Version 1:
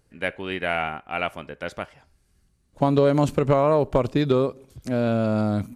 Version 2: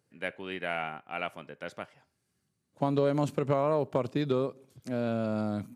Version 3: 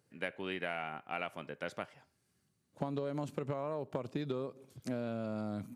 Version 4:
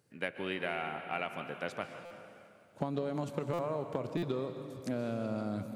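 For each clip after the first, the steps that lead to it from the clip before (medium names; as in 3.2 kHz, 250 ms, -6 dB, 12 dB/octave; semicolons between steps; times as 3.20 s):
high-pass 110 Hz 24 dB/octave; trim -8 dB
compression 10:1, threshold -34 dBFS, peak gain reduction 13.5 dB; trim +1 dB
plate-style reverb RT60 2.6 s, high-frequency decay 0.9×, pre-delay 115 ms, DRR 7.5 dB; buffer glitch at 2.05/3.53/4.17 s, samples 256, times 9; trim +2 dB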